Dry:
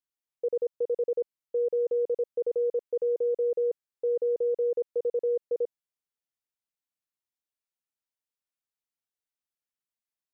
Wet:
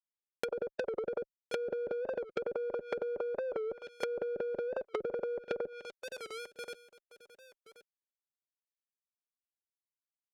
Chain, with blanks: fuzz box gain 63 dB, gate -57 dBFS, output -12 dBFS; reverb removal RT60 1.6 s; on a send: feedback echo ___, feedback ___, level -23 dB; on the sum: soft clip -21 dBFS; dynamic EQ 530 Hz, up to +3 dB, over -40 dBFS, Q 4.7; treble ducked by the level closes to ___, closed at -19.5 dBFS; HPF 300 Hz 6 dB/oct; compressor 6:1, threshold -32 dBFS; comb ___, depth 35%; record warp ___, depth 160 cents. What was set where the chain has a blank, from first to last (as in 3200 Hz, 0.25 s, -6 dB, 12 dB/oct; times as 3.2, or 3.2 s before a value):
1.078 s, 17%, 560 Hz, 5.1 ms, 45 rpm